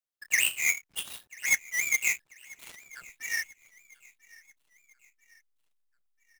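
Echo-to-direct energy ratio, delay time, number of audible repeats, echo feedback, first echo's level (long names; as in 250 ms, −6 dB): −22.0 dB, 990 ms, 2, 49%, −23.0 dB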